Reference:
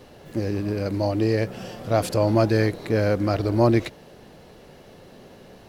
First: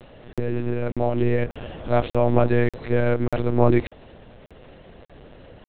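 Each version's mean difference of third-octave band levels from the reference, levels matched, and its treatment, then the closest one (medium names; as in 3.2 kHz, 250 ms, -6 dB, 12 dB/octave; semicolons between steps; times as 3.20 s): 6.5 dB: monotone LPC vocoder at 8 kHz 120 Hz; crackling interface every 0.59 s, samples 2048, zero, from 0.33 s; trim +1.5 dB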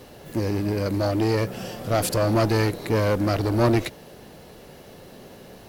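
4.0 dB: treble shelf 10 kHz +12 dB; one-sided clip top -21 dBFS; trim +2 dB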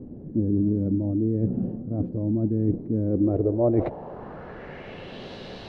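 12.5 dB: reverse; compression 12:1, threshold -28 dBFS, peak gain reduction 15.5 dB; reverse; low-pass sweep 260 Hz -> 3.9 kHz, 2.97–5.31 s; trim +7 dB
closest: second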